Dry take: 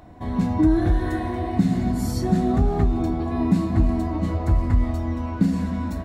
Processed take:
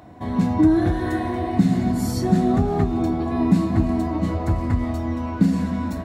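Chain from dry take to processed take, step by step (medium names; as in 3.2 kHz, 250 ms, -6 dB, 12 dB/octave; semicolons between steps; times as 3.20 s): high-pass 90 Hz 12 dB/octave; trim +2.5 dB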